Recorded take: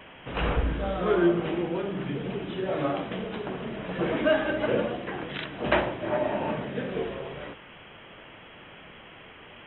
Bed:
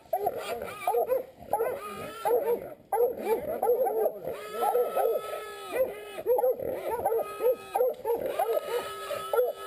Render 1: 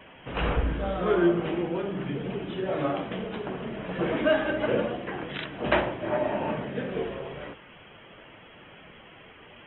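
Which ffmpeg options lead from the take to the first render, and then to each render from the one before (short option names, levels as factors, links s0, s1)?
-af "afftdn=nr=6:nf=-48"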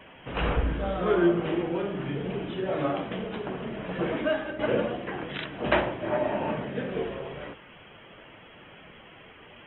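-filter_complex "[0:a]asettb=1/sr,asplit=3[s0][s1][s2];[s0]atrim=end=1.444[s3];[s1]atrim=start=1.44:end=2.5,asetpts=PTS-STARTPTS,afade=t=in:d=0.004:c=qsin,afade=t=out:st=1.056:d=0.004:c=qsin,asplit=2[s4][s5];[s5]adelay=44,volume=0.447[s6];[s4][s6]amix=inputs=2:normalize=0,atrim=end_sample=46746[s7];[s2]atrim=start=2.496[s8];[s3][s7]acrossfade=d=0.004:c1=hsin:c2=qsin[s9];[s9][s8]acrossfade=d=0.004:c1=qsin:c2=hsin,asplit=2[s10][s11];[s10]atrim=end=4.59,asetpts=PTS-STARTPTS,afade=t=out:st=3.93:d=0.66:silence=0.354813[s12];[s11]atrim=start=4.59,asetpts=PTS-STARTPTS,afade=t=in:d=0.004:c=hsin:silence=0.354813[s13];[s12][s13]concat=n=2:v=0:a=1"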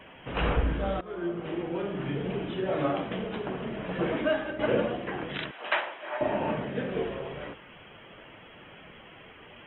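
-filter_complex "[0:a]asettb=1/sr,asplit=3[s0][s1][s2];[s0]atrim=end=5.514[s3];[s1]atrim=start=5.51:end=6.21,asetpts=PTS-STARTPTS,afade=t=in:d=0.004:c=qsin,afade=t=out:st=0.696:d=0.004:c=qsin,highpass=950[s4];[s2]atrim=start=6.206[s5];[s3][s4]acrossfade=d=0.004:c1=hsin:c2=qsin[s6];[s6][s5]acrossfade=d=0.004:c1=qsin:c2=hsin,asplit=2[s7][s8];[s7]atrim=end=1.01,asetpts=PTS-STARTPTS,afade=t=out:st=1.006:d=0.004:c=hsin:silence=0.0891251[s9];[s8]atrim=start=1.01,asetpts=PTS-STARTPTS,afade=t=in:d=1.08:silence=0.0891251[s10];[s9][s10]concat=n=2:v=0:a=1"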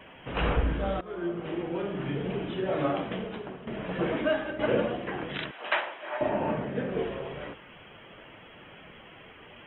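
-filter_complex "[0:a]asettb=1/sr,asplit=3[s0][s1][s2];[s0]atrim=end=6.294[s3];[s1]atrim=start=6.29:end=6.99,asetpts=PTS-STARTPTS,afade=t=in:d=0.004:c=qsin,afade=t=out:st=0.696:d=0.004:c=qsin,aemphasis=mode=reproduction:type=75fm[s4];[s2]atrim=start=6.986[s5];[s3][s4]acrossfade=d=0.004:c1=hsin:c2=qsin[s6];[s6][s5]acrossfade=d=0.004:c1=qsin:c2=hsin,asplit=2[s7][s8];[s7]atrim=end=3.67,asetpts=PTS-STARTPTS,afade=t=out:st=3.11:d=0.56:silence=0.266073[s9];[s8]atrim=start=3.67,asetpts=PTS-STARTPTS,afade=t=in:d=0.004:c=hsin:silence=0.266073[s10];[s9][s10]concat=n=2:v=0:a=1"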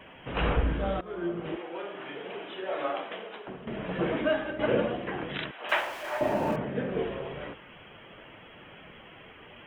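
-filter_complex "[0:a]asettb=1/sr,asplit=3[s0][s1][s2];[s0]atrim=end=1.564[s3];[s1]atrim=start=1.56:end=3.48,asetpts=PTS-STARTPTS,afade=t=in:d=0.004:c=qsin,afade=t=out:st=1.916:d=0.004:c=qsin,highpass=540[s4];[s2]atrim=start=3.476[s5];[s3][s4]acrossfade=d=0.004:c1=hsin:c2=qsin[s6];[s6][s5]acrossfade=d=0.004:c1=qsin:c2=hsin,asettb=1/sr,asplit=3[s7][s8][s9];[s7]atrim=end=5.694[s10];[s8]atrim=start=5.69:end=6.56,asetpts=PTS-STARTPTS,afade=t=in:d=0.004:c=qsin,afade=t=out:st=0.866:d=0.004:c=qsin,aeval=exprs='val(0)+0.5*0.01*sgn(val(0))':c=same[s11];[s9]atrim=start=6.556[s12];[s10][s11]acrossfade=d=0.004:c1=hsin:c2=qsin[s13];[s13][s12]acrossfade=d=0.004:c1=qsin:c2=hsin"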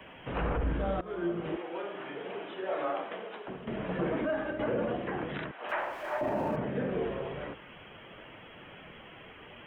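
-filter_complex "[0:a]acrossover=split=200|420|2000[s0][s1][s2][s3];[s3]acompressor=threshold=0.00251:ratio=12[s4];[s0][s1][s2][s4]amix=inputs=4:normalize=0,alimiter=limit=0.0708:level=0:latency=1:release=29"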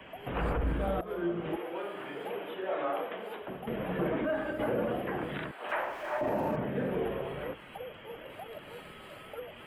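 -filter_complex "[1:a]volume=0.133[s0];[0:a][s0]amix=inputs=2:normalize=0"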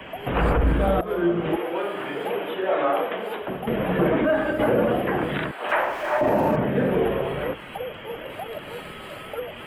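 -af "volume=3.35"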